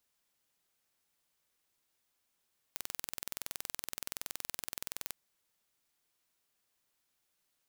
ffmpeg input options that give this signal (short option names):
-f lavfi -i "aevalsrc='0.299*eq(mod(n,2070),0)':d=2.38:s=44100"